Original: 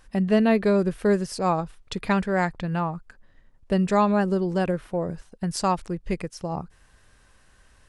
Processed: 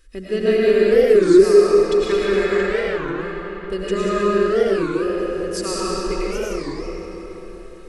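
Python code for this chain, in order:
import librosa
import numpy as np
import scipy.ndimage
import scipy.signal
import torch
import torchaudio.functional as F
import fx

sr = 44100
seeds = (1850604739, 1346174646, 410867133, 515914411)

p1 = fx.fixed_phaser(x, sr, hz=340.0, stages=4)
p2 = p1 + 0.54 * np.pad(p1, (int(2.4 * sr / 1000.0), 0))[:len(p1)]
p3 = p2 + fx.echo_single(p2, sr, ms=191, db=-8.5, dry=0)
p4 = fx.rev_freeverb(p3, sr, rt60_s=4.4, hf_ratio=0.7, predelay_ms=65, drr_db=-8.0)
p5 = fx.record_warp(p4, sr, rpm=33.33, depth_cents=250.0)
y = p5 * librosa.db_to_amplitude(-1.0)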